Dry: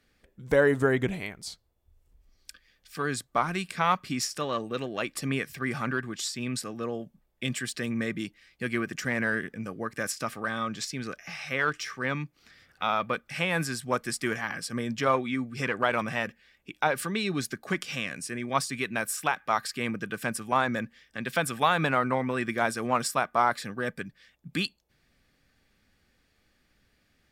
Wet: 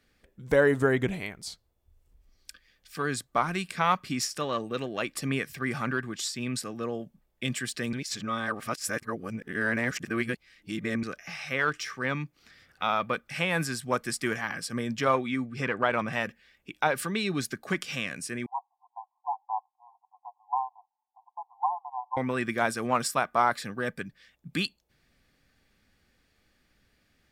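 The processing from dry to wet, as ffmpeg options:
-filter_complex "[0:a]asettb=1/sr,asplit=3[a][b][c];[a]atrim=end=15.464[d];[b]atrim=start=15.46:end=16.13,asetpts=PTS-STARTPTS,afade=t=in:d=0.004:c=qsin,afade=t=out:st=0.666:d=0.004:c=qsin,aemphasis=mode=reproduction:type=cd[e];[c]atrim=start=16.126[f];[d][e]acrossfade=d=0.004:c1=hsin:c2=qsin[g];[g][f]acrossfade=d=0.004:c1=qsin:c2=hsin,asettb=1/sr,asplit=3[h][i][j];[h]atrim=end=18.464[k];[i]atrim=start=18.46:end=22.17,asetpts=PTS-STARTPTS,afade=t=in:d=0.004:c=qsin,afade=t=out:st=3.706:d=0.004:c=qsin,asuperpass=centerf=870:order=20:qfactor=2.6[l];[j]atrim=start=22.166[m];[k][l]acrossfade=d=0.004:c1=hsin:c2=qsin[n];[n][m]acrossfade=d=0.004:c1=qsin:c2=hsin,asplit=3[o][p][q];[o]atrim=end=7.932[r];[p]atrim=start=7.928:end=11.032,asetpts=PTS-STARTPTS,areverse[s];[q]atrim=start=11.028[t];[r][s]acrossfade=d=0.004:c1=hsin:c2=hsin[u];[u][t]acrossfade=d=0.004:c1=hsin:c2=hsin"

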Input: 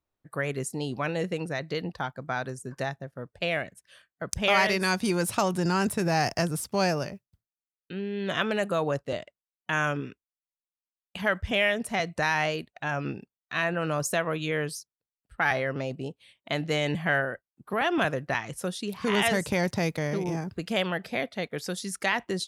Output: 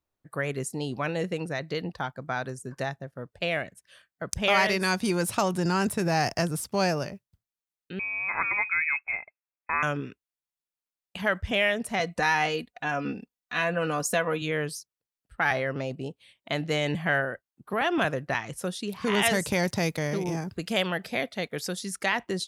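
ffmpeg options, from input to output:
-filter_complex "[0:a]asettb=1/sr,asplit=3[a][b][c];[a]atrim=end=7.994[d];[b]atrim=start=7.99:end=9.83,asetpts=PTS-STARTPTS,afade=t=in:d=0.004:c=qsin,afade=t=out:st=1.836:d=0.004:c=qsin,lowpass=f=2.3k:t=q:w=0.5098,lowpass=f=2.3k:t=q:w=0.6013,lowpass=f=2.3k:t=q:w=0.9,lowpass=f=2.3k:t=q:w=2.563,afreqshift=-2700[e];[c]atrim=start=9.826[f];[d][e]acrossfade=d=0.004:c1=hsin:c2=qsin[g];[g][f]acrossfade=d=0.004:c1=qsin:c2=hsin,asettb=1/sr,asplit=3[h][i][j];[h]atrim=end=12.004[k];[i]atrim=start=12:end=14.42,asetpts=PTS-STARTPTS,afade=t=in:d=0.004:c=qsin,afade=t=out:st=2.416:d=0.004:c=qsin,aecho=1:1:4.1:0.65,atrim=end_sample=106722[l];[j]atrim=start=14.416[m];[k][l]acrossfade=d=0.004:c1=hsin:c2=qsin[n];[n][m]acrossfade=d=0.004:c1=qsin:c2=hsin,asettb=1/sr,asplit=3[o][p][q];[o]atrim=end=19.234[r];[p]atrim=start=19.23:end=21.68,asetpts=PTS-STARTPTS,afade=t=in:d=0.004:c=qsin,afade=t=out:st=2.446:d=0.004:c=qsin,highshelf=f=3.8k:g=5.5[s];[q]atrim=start=21.676[t];[r][s]acrossfade=d=0.004:c1=hsin:c2=qsin[u];[u][t]acrossfade=d=0.004:c1=qsin:c2=hsin"

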